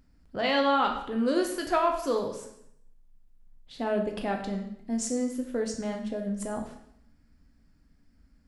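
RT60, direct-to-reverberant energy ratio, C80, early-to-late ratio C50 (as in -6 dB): 0.75 s, 2.5 dB, 10.0 dB, 7.0 dB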